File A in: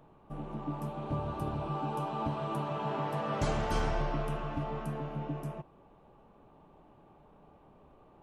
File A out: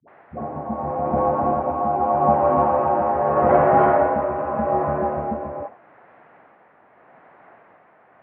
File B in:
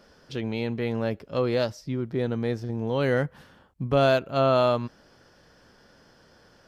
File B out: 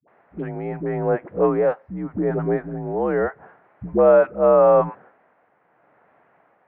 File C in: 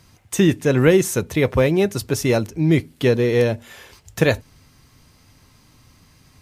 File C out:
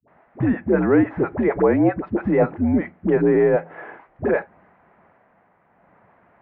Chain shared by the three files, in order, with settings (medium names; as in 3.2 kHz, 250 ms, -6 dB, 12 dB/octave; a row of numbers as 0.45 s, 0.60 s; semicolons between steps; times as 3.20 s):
expander -45 dBFS; added noise white -57 dBFS; tremolo 0.82 Hz, depth 45%; peak limiter -15 dBFS; peaking EQ 760 Hz +9.5 dB 0.83 oct; phase dispersion highs, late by 82 ms, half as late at 510 Hz; mistuned SSB -71 Hz 210–2000 Hz; normalise loudness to -20 LUFS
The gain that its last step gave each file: +14.0 dB, +5.5 dB, +5.5 dB